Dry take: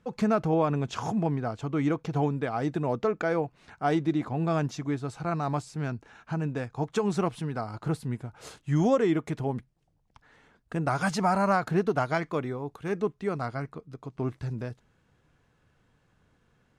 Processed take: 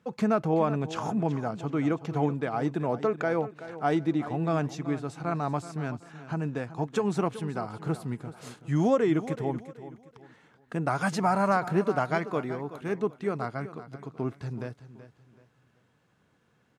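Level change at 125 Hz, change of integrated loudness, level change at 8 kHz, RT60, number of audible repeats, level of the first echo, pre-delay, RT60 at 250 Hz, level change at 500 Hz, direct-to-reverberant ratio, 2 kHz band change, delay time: -1.5 dB, 0.0 dB, -1.5 dB, none, 3, -14.0 dB, none, none, 0.0 dB, none, 0.0 dB, 0.378 s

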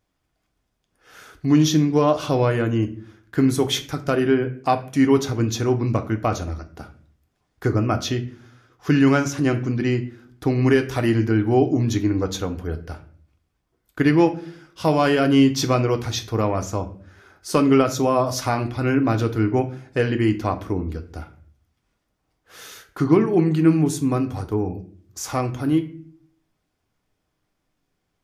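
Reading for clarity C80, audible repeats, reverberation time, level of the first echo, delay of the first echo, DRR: 18.5 dB, none, 0.50 s, none, none, 6.0 dB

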